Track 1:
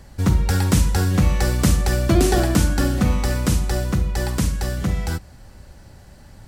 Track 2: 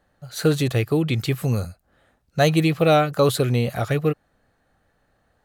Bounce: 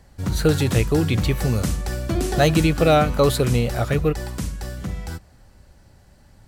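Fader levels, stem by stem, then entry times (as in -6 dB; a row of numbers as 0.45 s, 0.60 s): -7.0 dB, +0.5 dB; 0.00 s, 0.00 s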